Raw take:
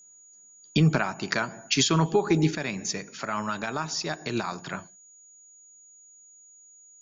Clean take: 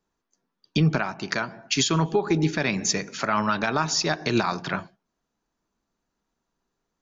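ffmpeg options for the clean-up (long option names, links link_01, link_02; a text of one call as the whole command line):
ffmpeg -i in.wav -af "bandreject=frequency=6800:width=30,asetnsamples=nb_out_samples=441:pad=0,asendcmd='2.55 volume volume 6.5dB',volume=0dB" out.wav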